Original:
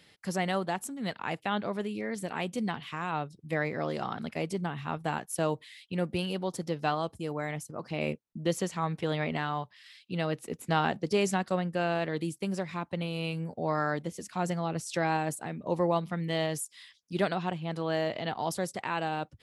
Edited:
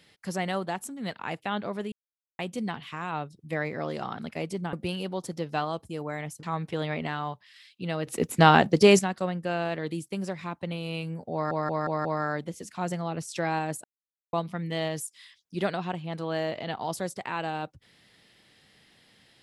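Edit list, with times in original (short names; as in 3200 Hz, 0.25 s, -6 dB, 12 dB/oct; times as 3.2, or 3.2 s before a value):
1.92–2.39 mute
4.73–6.03 cut
7.73–8.73 cut
10.37–11.29 gain +10 dB
13.63 stutter 0.18 s, 5 plays
15.42–15.91 mute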